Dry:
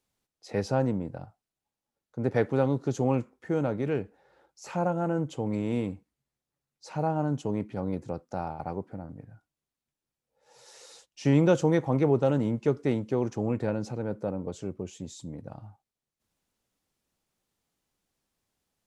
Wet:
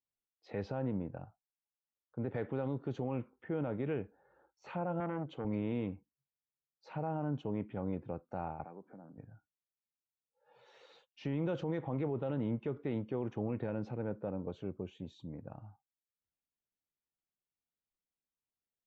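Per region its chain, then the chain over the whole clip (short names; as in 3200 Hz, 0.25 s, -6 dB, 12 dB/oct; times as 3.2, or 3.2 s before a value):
5–5.45 HPF 130 Hz + core saturation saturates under 620 Hz
8.64–9.18 HPF 160 Hz 24 dB/oct + compressor 2:1, threshold -48 dBFS
whole clip: LPF 3700 Hz 24 dB/oct; spectral noise reduction 15 dB; limiter -21 dBFS; gain -5.5 dB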